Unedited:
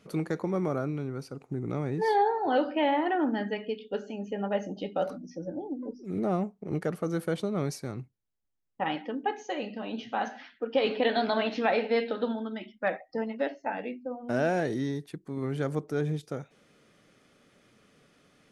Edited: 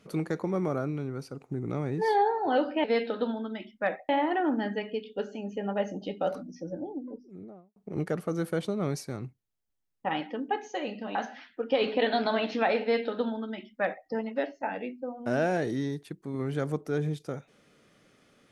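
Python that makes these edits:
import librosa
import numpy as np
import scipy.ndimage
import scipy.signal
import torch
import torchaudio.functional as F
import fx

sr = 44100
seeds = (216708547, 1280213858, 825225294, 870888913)

y = fx.studio_fade_out(x, sr, start_s=5.43, length_s=1.08)
y = fx.edit(y, sr, fx.cut(start_s=9.9, length_s=0.28),
    fx.duplicate(start_s=11.85, length_s=1.25, to_s=2.84), tone=tone)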